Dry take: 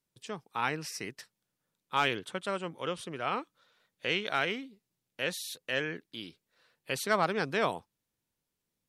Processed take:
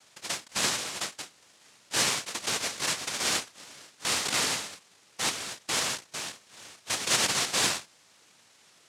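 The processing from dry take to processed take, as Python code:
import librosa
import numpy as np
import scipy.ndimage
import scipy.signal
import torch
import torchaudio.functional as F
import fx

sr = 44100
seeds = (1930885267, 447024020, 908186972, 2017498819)

y = fx.bin_compress(x, sr, power=0.6)
y = fx.noise_vocoder(y, sr, seeds[0], bands=1)
y = fx.end_taper(y, sr, db_per_s=240.0)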